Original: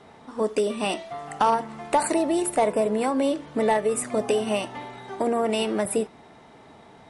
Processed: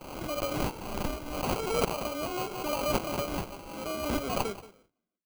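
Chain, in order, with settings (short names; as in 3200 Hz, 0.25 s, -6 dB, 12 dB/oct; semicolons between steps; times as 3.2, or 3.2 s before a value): tape stop at the end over 1.47 s; speed mistake 33 rpm record played at 45 rpm; steep high-pass 180 Hz 48 dB/oct; tilt shelf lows -8 dB; echo 0.179 s -16.5 dB; gate with hold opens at -42 dBFS; Chebyshev band-stop 730–1700 Hz, order 3; sample-rate reducer 1800 Hz, jitter 0%; backwards sustainer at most 46 dB/s; gain -6 dB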